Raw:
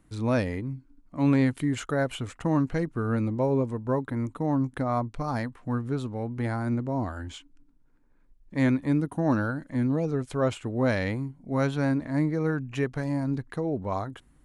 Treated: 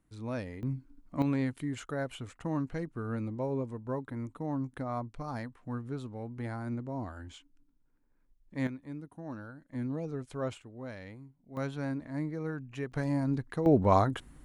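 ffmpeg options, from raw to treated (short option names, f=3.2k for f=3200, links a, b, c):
-af "asetnsamples=n=441:p=0,asendcmd='0.63 volume volume 0dB;1.22 volume volume -8.5dB;8.67 volume volume -17.5dB;9.73 volume volume -9.5dB;10.62 volume volume -18dB;11.57 volume volume -9.5dB;12.92 volume volume -2dB;13.66 volume volume 6.5dB',volume=-11.5dB"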